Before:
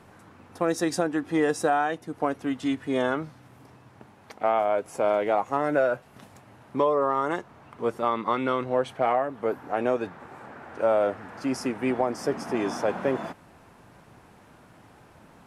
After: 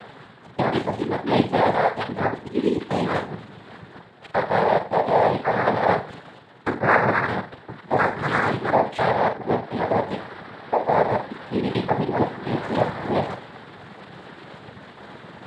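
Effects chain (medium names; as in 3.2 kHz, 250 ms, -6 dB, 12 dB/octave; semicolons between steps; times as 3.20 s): time reversed locally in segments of 145 ms; reverse; upward compressor, threshold -34 dBFS; reverse; LPC vocoder at 8 kHz pitch kept; flutter echo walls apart 7.7 m, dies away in 0.33 s; noise-vocoded speech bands 6; trim +4.5 dB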